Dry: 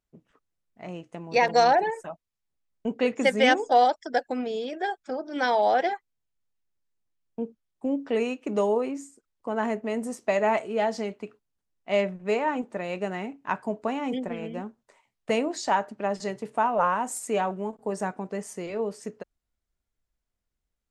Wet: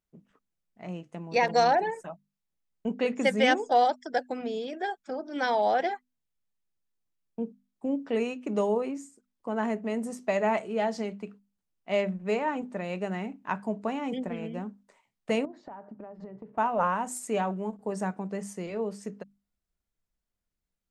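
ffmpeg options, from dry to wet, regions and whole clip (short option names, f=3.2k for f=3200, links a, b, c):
-filter_complex "[0:a]asettb=1/sr,asplit=3[a][b][c];[a]atrim=end=15.454[d];[b]atrim=start=15.45:end=16.58,asetpts=PTS-STARTPTS,afade=t=in:d=0.004:c=qsin,afade=t=out:st=1.126:d=0.004:c=qsin,lowpass=1.1k,acompressor=threshold=-37dB:ratio=10:attack=3.2:release=140:knee=1:detection=peak[e];[c]atrim=start=16.576[f];[d][e]acrossfade=d=0.004:c1=hsin:c2=qsin[g];[g][f]acrossfade=d=0.004:c1=qsin:c2=hsin,equalizer=f=190:w=2.9:g=6.5,bandreject=f=50:t=h:w=6,bandreject=f=100:t=h:w=6,bandreject=f=150:t=h:w=6,bandreject=f=200:t=h:w=6,bandreject=f=250:t=h:w=6,volume=-3dB"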